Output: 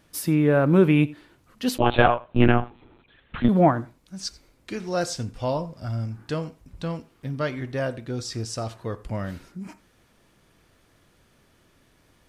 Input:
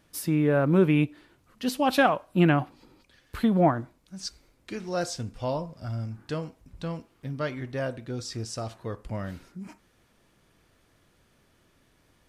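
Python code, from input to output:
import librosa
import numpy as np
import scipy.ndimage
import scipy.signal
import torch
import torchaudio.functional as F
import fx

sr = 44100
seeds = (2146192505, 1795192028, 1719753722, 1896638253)

y = x + 10.0 ** (-22.5 / 20.0) * np.pad(x, (int(88 * sr / 1000.0), 0))[:len(x)]
y = fx.lpc_monotone(y, sr, seeds[0], pitch_hz=120.0, order=16, at=(1.78, 3.49))
y = y * librosa.db_to_amplitude(3.5)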